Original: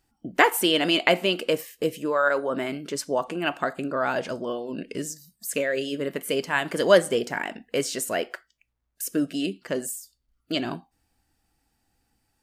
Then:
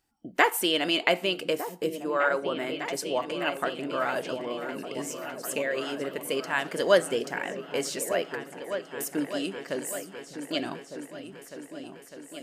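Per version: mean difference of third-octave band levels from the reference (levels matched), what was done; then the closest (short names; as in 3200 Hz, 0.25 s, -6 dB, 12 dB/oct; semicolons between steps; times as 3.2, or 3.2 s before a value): 5.5 dB: low shelf 190 Hz -8 dB; on a send: repeats that get brighter 0.603 s, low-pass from 200 Hz, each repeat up 2 oct, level -6 dB; on the sum: gain -3 dB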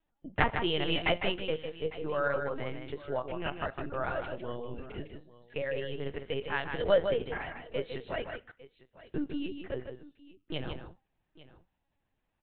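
10.5 dB: LPC vocoder at 8 kHz pitch kept; on a send: tapped delay 0.154/0.852 s -7/-19 dB; on the sum: gain -8.5 dB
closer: first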